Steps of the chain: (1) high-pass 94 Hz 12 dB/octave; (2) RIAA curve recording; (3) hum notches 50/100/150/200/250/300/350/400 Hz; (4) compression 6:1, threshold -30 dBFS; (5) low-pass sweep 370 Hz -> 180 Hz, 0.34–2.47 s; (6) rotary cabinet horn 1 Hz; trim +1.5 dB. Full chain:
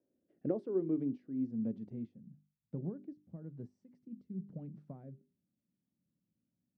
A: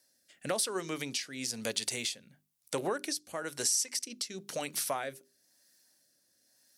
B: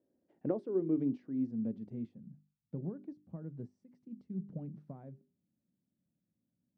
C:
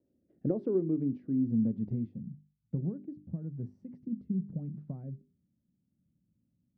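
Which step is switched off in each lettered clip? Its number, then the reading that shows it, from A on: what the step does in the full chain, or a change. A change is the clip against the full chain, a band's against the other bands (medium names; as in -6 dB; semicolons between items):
5, 1 kHz band +25.5 dB; 6, 1 kHz band +2.0 dB; 2, crest factor change -3.0 dB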